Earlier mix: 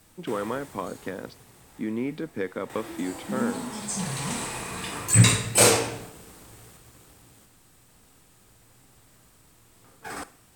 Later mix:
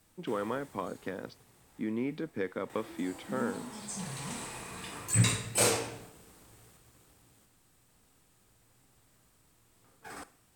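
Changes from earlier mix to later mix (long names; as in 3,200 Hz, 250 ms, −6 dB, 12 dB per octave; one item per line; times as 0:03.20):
speech −4.0 dB
background −9.0 dB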